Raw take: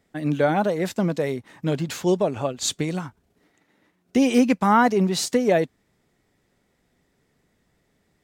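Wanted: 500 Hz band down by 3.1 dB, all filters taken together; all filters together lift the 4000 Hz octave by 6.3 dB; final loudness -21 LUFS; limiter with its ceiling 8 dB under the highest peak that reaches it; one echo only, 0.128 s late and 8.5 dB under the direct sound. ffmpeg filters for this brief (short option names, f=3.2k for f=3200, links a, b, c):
-af "equalizer=f=500:t=o:g=-4,equalizer=f=4k:t=o:g=7.5,alimiter=limit=-15dB:level=0:latency=1,aecho=1:1:128:0.376,volume=4dB"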